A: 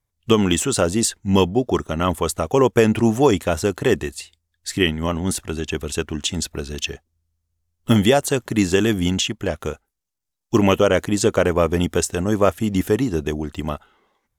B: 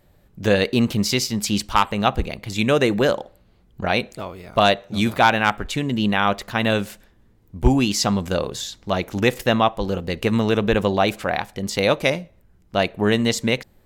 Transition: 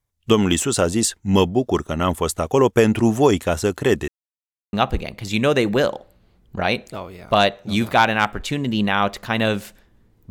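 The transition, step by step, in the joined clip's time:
A
4.08–4.73 mute
4.73 switch to B from 1.98 s

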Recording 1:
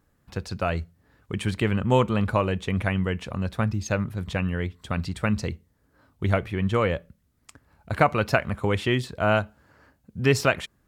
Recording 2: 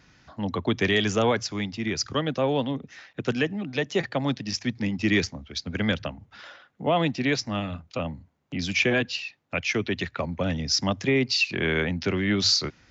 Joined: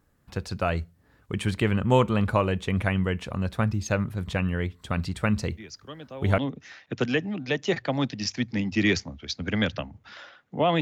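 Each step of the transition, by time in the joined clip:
recording 1
5.57 add recording 2 from 1.84 s 0.81 s -15 dB
6.38 switch to recording 2 from 2.65 s

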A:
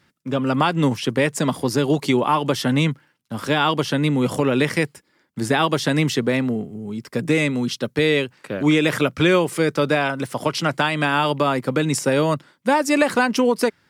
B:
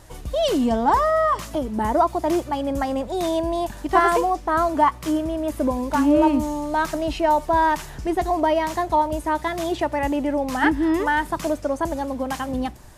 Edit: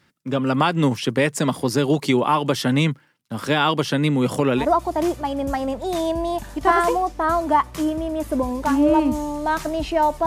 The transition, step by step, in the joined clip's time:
A
4.61 switch to B from 1.89 s, crossfade 0.10 s

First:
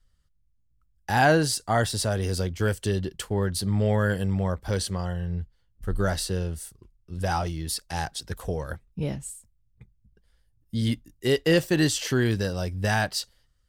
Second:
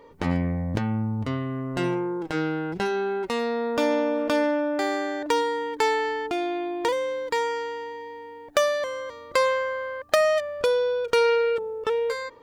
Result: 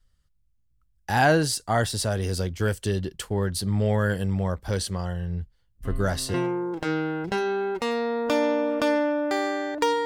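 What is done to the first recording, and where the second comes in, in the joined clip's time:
first
5.85 add second from 1.33 s 0.49 s -11.5 dB
6.34 switch to second from 1.82 s

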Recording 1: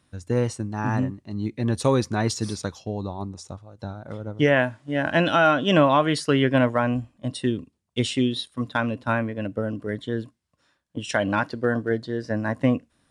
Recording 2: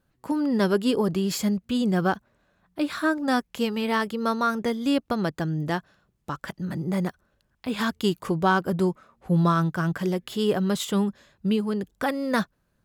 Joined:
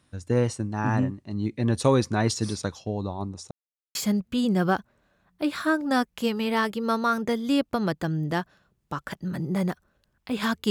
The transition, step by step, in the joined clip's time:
recording 1
3.51–3.95 mute
3.95 switch to recording 2 from 1.32 s

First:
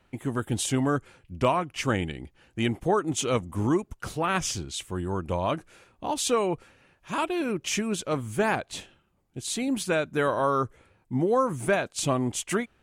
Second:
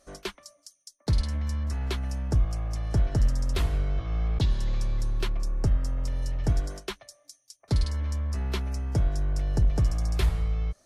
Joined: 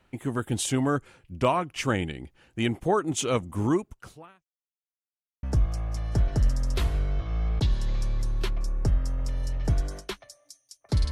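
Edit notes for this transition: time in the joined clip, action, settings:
first
3.75–4.45 fade out quadratic
4.45–5.43 mute
5.43 switch to second from 2.22 s

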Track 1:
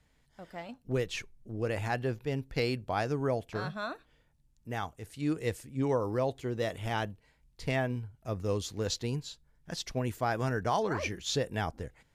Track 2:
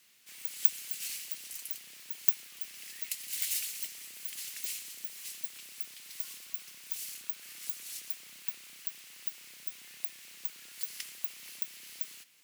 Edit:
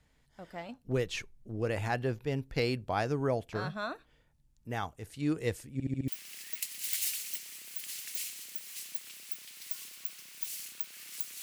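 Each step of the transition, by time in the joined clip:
track 1
5.73 stutter in place 0.07 s, 5 plays
6.08 switch to track 2 from 2.57 s

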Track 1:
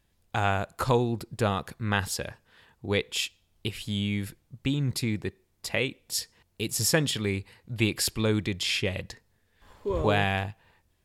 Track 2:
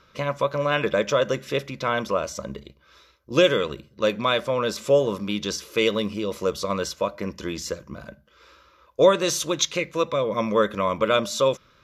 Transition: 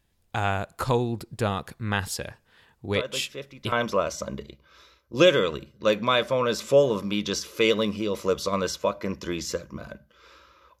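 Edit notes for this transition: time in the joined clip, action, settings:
track 1
2.94 add track 2 from 1.11 s 0.78 s -12 dB
3.72 switch to track 2 from 1.89 s

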